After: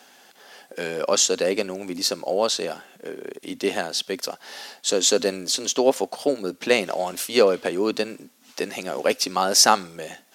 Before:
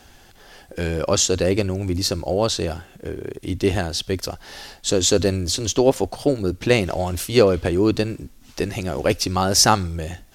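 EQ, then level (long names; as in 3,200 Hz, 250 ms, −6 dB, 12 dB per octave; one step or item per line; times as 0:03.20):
high-pass filter 240 Hz 24 dB per octave
parametric band 330 Hz −8 dB 0.45 octaves
0.0 dB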